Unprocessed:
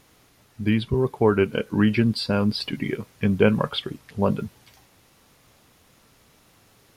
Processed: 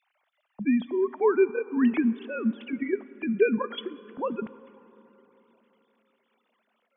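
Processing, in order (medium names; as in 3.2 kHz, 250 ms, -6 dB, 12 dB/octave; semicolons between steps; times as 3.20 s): formants replaced by sine waves; plate-style reverb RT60 3.9 s, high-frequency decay 0.45×, DRR 16.5 dB; trim -4 dB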